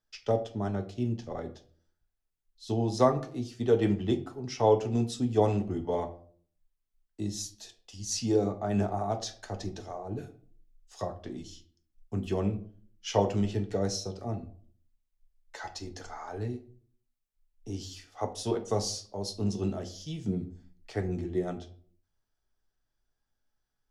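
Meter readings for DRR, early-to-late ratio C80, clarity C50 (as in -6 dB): 6.0 dB, 18.5 dB, 14.5 dB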